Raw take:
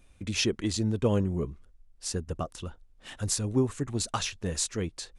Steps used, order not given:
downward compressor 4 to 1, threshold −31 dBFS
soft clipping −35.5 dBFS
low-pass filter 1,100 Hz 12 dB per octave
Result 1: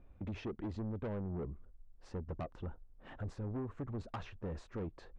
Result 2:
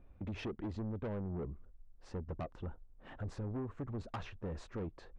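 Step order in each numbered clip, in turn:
downward compressor, then low-pass filter, then soft clipping
low-pass filter, then downward compressor, then soft clipping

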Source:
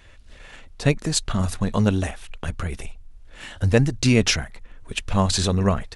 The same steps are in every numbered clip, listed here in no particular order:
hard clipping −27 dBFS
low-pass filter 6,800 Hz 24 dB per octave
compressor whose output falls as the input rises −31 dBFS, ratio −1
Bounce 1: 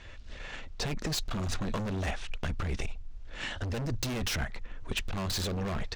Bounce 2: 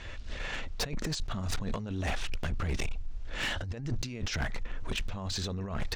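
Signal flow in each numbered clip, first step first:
low-pass filter, then hard clipping, then compressor whose output falls as the input rises
compressor whose output falls as the input rises, then low-pass filter, then hard clipping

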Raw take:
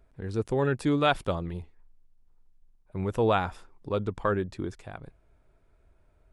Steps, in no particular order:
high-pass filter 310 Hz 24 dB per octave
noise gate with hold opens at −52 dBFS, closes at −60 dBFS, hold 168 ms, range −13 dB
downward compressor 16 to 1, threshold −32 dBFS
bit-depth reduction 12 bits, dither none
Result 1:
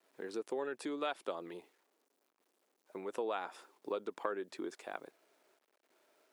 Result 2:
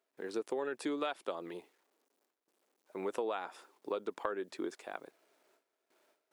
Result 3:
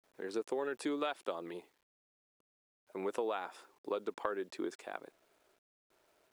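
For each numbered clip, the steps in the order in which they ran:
noise gate with hold, then bit-depth reduction, then downward compressor, then high-pass filter
bit-depth reduction, then noise gate with hold, then high-pass filter, then downward compressor
noise gate with hold, then high-pass filter, then downward compressor, then bit-depth reduction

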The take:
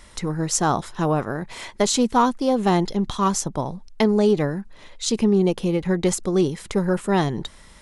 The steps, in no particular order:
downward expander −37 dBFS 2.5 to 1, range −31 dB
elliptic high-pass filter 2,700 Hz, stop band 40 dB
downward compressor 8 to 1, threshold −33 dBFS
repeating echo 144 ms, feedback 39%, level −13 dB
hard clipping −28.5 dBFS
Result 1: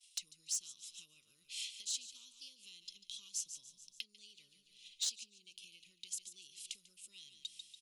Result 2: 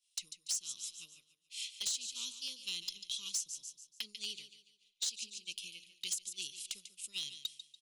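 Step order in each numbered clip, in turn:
downward expander, then repeating echo, then downward compressor, then elliptic high-pass filter, then hard clipping
elliptic high-pass filter, then downward expander, then repeating echo, then downward compressor, then hard clipping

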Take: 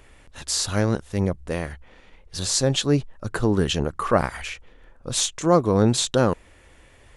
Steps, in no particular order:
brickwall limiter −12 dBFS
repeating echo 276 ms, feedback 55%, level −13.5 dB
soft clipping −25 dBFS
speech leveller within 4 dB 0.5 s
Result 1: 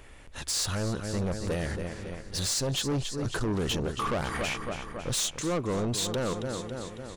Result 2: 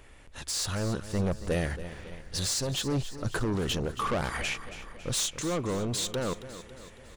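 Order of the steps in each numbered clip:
repeating echo, then speech leveller, then brickwall limiter, then soft clipping
brickwall limiter, then soft clipping, then speech leveller, then repeating echo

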